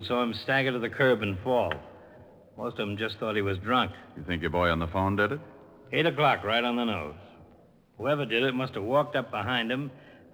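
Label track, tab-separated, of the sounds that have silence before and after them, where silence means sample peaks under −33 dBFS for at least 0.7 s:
2.600000	7.110000	sound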